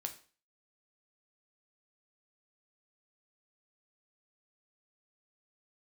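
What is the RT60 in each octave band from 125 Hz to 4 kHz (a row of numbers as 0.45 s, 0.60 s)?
0.40 s, 0.40 s, 0.40 s, 0.40 s, 0.40 s, 0.40 s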